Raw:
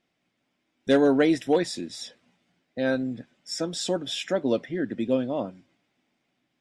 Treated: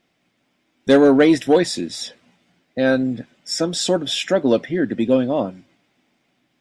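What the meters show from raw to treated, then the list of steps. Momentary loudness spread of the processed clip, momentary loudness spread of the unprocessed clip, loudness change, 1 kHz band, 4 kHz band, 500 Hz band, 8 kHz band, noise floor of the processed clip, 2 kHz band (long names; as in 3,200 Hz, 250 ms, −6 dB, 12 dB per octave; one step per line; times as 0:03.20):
16 LU, 16 LU, +7.5 dB, +7.5 dB, +8.0 dB, +7.5 dB, +8.5 dB, −68 dBFS, +7.5 dB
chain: soft clipping −11.5 dBFS, distortion −23 dB
level +8.5 dB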